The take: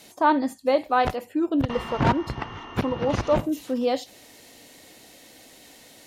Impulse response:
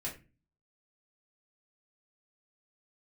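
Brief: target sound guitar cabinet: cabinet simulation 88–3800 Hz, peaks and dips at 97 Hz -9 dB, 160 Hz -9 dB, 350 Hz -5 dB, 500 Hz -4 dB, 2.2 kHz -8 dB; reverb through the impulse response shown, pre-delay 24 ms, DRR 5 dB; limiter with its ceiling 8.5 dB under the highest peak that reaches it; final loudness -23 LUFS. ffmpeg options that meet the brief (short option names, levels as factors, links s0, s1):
-filter_complex "[0:a]alimiter=limit=0.15:level=0:latency=1,asplit=2[s0][s1];[1:a]atrim=start_sample=2205,adelay=24[s2];[s1][s2]afir=irnorm=-1:irlink=0,volume=0.501[s3];[s0][s3]amix=inputs=2:normalize=0,highpass=88,equalizer=f=97:t=q:w=4:g=-9,equalizer=f=160:t=q:w=4:g=-9,equalizer=f=350:t=q:w=4:g=-5,equalizer=f=500:t=q:w=4:g=-4,equalizer=f=2200:t=q:w=4:g=-8,lowpass=f=3800:w=0.5412,lowpass=f=3800:w=1.3066,volume=1.68"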